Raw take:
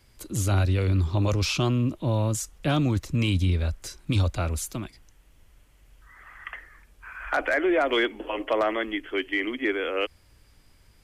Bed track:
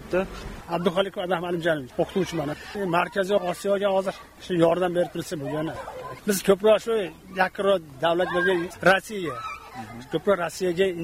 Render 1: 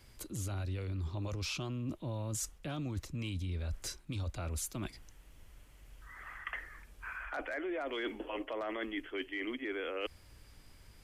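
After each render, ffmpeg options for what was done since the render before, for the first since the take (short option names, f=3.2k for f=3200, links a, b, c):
-af "alimiter=limit=-19.5dB:level=0:latency=1:release=22,areverse,acompressor=threshold=-36dB:ratio=6,areverse"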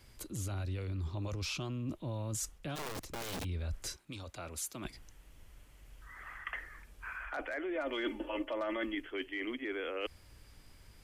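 -filter_complex "[0:a]asplit=3[a][b][c];[a]afade=t=out:st=2.75:d=0.02[d];[b]aeval=exprs='(mod(59.6*val(0)+1,2)-1)/59.6':c=same,afade=t=in:st=2.75:d=0.02,afade=t=out:st=3.43:d=0.02[e];[c]afade=t=in:st=3.43:d=0.02[f];[d][e][f]amix=inputs=3:normalize=0,asettb=1/sr,asplit=3[g][h][i];[g]atrim=end=3.964[j];[h]atrim=start=3.96:end=4.85,asetpts=PTS-STARTPTS,afade=t=in:d=0.004:c=qsin,afade=t=out:st=0.886:d=0.004:c=qsin,highpass=f=330:p=1[k];[i]atrim=start=4.846[l];[j][k]acrossfade=d=0.004:c1=hsin:c2=qsin[m];[m][l]acrossfade=d=0.004:c1=qsin:c2=hsin,asettb=1/sr,asplit=3[n][o][p];[n]atrim=end=7.754[q];[o]atrim=start=7.75:end=8.95,asetpts=PTS-STARTPTS,afade=t=in:d=0.004:c=qsin,afade=t=out:st=1.196:d=0.004:c=qsin,aecho=1:1:3.4:0.65,atrim=end_sample=52920[r];[p]atrim=start=8.946[s];[q][r]acrossfade=d=0.004:c1=hsin:c2=qsin[t];[t][s]acrossfade=d=0.004:c1=qsin:c2=hsin"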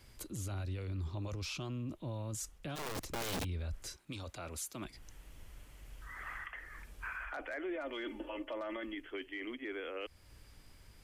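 -af "dynaudnorm=f=420:g=13:m=3.5dB,alimiter=level_in=9dB:limit=-24dB:level=0:latency=1:release=288,volume=-9dB"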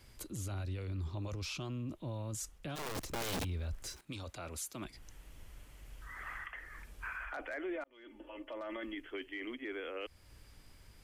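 -filter_complex "[0:a]asettb=1/sr,asplit=3[a][b][c];[a]atrim=end=2.944[d];[b]atrim=start=2.94:end=4.01,asetpts=PTS-STARTPTS,afade=t=in:d=0.004:c=qsin,afade=t=out:st=1.066:d=0.004:c=qsin,aeval=exprs='val(0)+0.5*0.002*sgn(val(0))':c=same[e];[c]atrim=start=4.006[f];[d][e]acrossfade=d=0.004:c1=hsin:c2=qsin[g];[g][f]acrossfade=d=0.004:c1=qsin:c2=hsin,asplit=2[h][i];[h]atrim=end=7.84,asetpts=PTS-STARTPTS,afade=t=out:st=7.836:d=0.004:c=hsin[j];[i]atrim=start=7.84,asetpts=PTS-STARTPTS,afade=t=in:d=1.01[k];[j][k]concat=n=2:v=0:a=1"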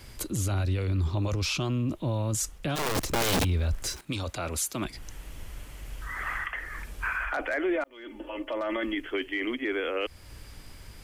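-af "volume=12dB"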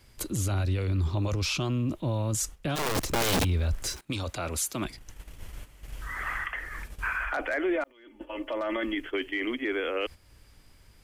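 -af "agate=range=-10dB:threshold=-39dB:ratio=16:detection=peak"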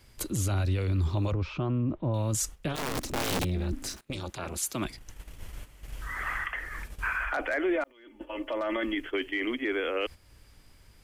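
-filter_complex "[0:a]asettb=1/sr,asplit=3[a][b][c];[a]atrim=end=1.314[d];[b]atrim=start=1.31:end=2.14,asetpts=PTS-STARTPTS,afade=t=in:d=0.004:c=qsin,afade=t=out:st=0.826:d=0.004:c=qsin,lowpass=1.5k[e];[c]atrim=start=2.136[f];[d][e]acrossfade=d=0.004:c1=hsin:c2=qsin[g];[g][f]acrossfade=d=0.004:c1=qsin:c2=hsin,asettb=1/sr,asplit=3[h][i][j];[h]atrim=end=2.684[k];[i]atrim=start=2.68:end=4.63,asetpts=PTS-STARTPTS,afade=t=in:d=0.004:c=qsin,afade=t=out:st=1.946:d=0.004:c=qsin,tremolo=f=270:d=0.947[l];[j]atrim=start=4.626[m];[k][l]acrossfade=d=0.004:c1=hsin:c2=qsin[n];[n][m]acrossfade=d=0.004:c1=qsin:c2=hsin"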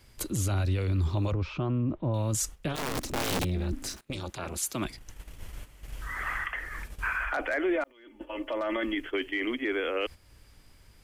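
-af anull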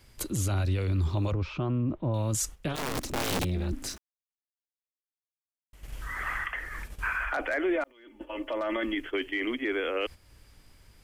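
-filter_complex "[0:a]asplit=3[a][b][c];[a]atrim=end=3.98,asetpts=PTS-STARTPTS,afade=t=out:st=3.976:d=0.004:c=hsin[d];[b]atrim=start=3.98:end=5.73,asetpts=PTS-STARTPTS,volume=0[e];[c]atrim=start=5.73,asetpts=PTS-STARTPTS,afade=t=in:d=0.004:c=hsin[f];[d][e][f]concat=n=3:v=0:a=1"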